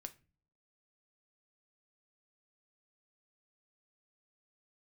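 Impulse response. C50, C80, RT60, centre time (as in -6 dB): 18.5 dB, 24.5 dB, not exponential, 5 ms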